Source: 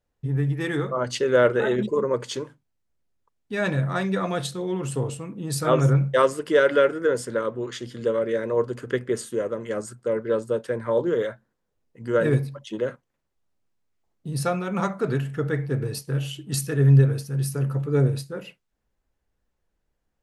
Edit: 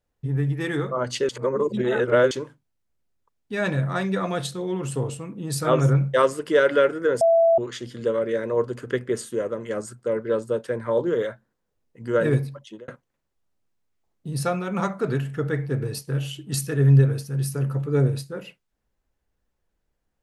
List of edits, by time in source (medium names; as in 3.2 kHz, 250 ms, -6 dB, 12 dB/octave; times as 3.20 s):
1.29–2.31 s: reverse
7.21–7.58 s: bleep 665 Hz -13.5 dBFS
12.51–12.88 s: fade out